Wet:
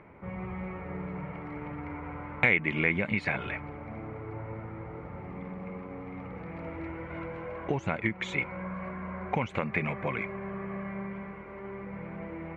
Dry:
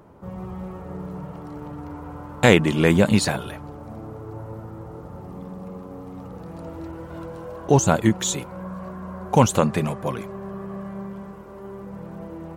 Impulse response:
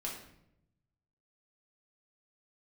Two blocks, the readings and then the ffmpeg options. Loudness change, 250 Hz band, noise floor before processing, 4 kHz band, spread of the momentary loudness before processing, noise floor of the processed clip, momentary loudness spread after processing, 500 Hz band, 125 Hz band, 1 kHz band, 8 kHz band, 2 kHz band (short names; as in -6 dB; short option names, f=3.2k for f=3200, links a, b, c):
-12.0 dB, -11.0 dB, -39 dBFS, -14.5 dB, 20 LU, -44 dBFS, 14 LU, -12.0 dB, -11.5 dB, -9.5 dB, -30.5 dB, -1.0 dB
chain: -af "acompressor=threshold=-23dB:ratio=10,lowpass=f=2.2k:t=q:w=11,volume=-4dB"